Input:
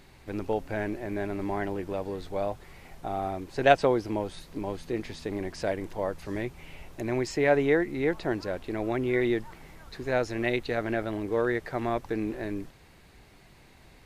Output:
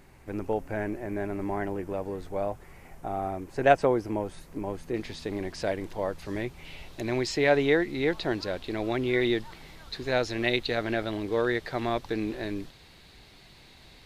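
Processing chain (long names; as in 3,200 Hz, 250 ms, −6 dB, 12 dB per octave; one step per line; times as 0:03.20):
parametric band 3,900 Hz −8.5 dB 0.93 octaves, from 0:04.94 +3.5 dB, from 0:06.65 +10.5 dB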